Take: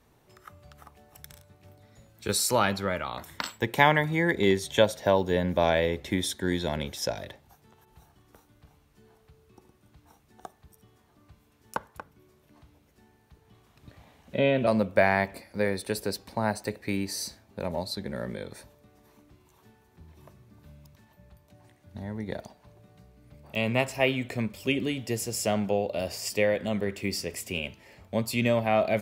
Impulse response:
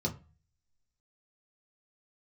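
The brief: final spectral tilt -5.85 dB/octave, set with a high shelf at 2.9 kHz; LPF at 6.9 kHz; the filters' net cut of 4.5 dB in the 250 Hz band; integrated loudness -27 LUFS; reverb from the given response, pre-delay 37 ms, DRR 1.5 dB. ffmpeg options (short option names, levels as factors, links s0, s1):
-filter_complex "[0:a]lowpass=6900,equalizer=f=250:t=o:g=-6,highshelf=f=2900:g=-5.5,asplit=2[s0][s1];[1:a]atrim=start_sample=2205,adelay=37[s2];[s1][s2]afir=irnorm=-1:irlink=0,volume=0.501[s3];[s0][s3]amix=inputs=2:normalize=0,volume=0.794"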